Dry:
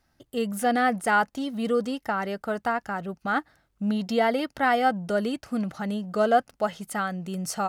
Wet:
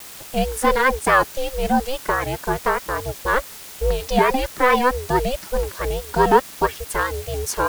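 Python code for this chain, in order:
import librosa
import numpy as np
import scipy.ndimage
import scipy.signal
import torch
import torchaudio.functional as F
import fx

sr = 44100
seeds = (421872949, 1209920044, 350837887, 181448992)

p1 = fx.dereverb_blind(x, sr, rt60_s=0.9)
p2 = fx.quant_dither(p1, sr, seeds[0], bits=6, dither='triangular')
p3 = p1 + F.gain(torch.from_numpy(p2), -4.5).numpy()
p4 = p3 * np.sin(2.0 * np.pi * 260.0 * np.arange(len(p3)) / sr)
p5 = fx.vibrato(p4, sr, rate_hz=4.7, depth_cents=94.0)
y = F.gain(torch.from_numpy(p5), 5.5).numpy()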